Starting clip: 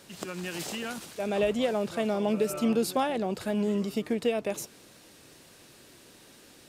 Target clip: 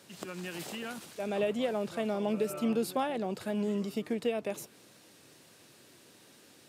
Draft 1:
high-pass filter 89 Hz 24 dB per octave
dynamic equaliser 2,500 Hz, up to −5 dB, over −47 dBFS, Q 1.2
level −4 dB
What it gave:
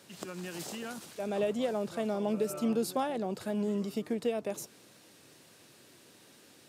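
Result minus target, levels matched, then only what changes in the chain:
2,000 Hz band −3.0 dB
change: dynamic equaliser 6,100 Hz, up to −5 dB, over −47 dBFS, Q 1.2

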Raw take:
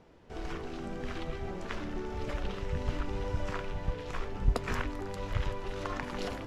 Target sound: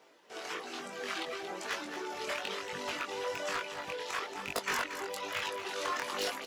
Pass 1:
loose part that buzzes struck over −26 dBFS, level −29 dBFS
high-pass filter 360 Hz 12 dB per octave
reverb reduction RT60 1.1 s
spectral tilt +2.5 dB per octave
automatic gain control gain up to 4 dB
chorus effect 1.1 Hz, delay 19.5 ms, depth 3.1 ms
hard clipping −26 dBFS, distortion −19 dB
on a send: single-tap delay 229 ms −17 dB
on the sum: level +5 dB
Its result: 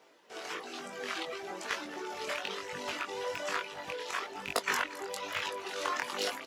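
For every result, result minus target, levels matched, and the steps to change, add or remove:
hard clipping: distortion −8 dB; echo-to-direct −7.5 dB
change: hard clipping −32.5 dBFS, distortion −11 dB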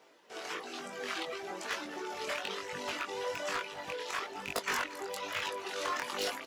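echo-to-direct −7.5 dB
change: single-tap delay 229 ms −9.5 dB

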